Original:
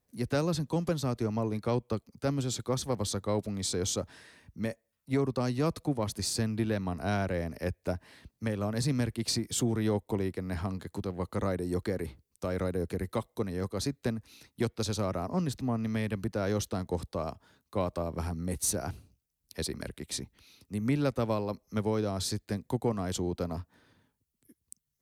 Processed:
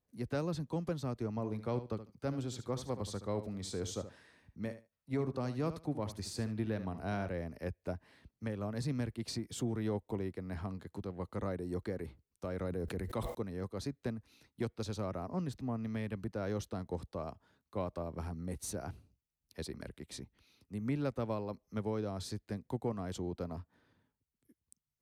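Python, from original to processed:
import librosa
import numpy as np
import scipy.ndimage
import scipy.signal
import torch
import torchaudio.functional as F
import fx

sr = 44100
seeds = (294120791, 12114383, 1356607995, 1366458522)

y = fx.echo_feedback(x, sr, ms=74, feedback_pct=16, wet_db=-12, at=(1.3, 7.29))
y = fx.sustainer(y, sr, db_per_s=25.0, at=(12.64, 13.35))
y = fx.high_shelf(y, sr, hz=3800.0, db=-8.0)
y = y * 10.0 ** (-6.5 / 20.0)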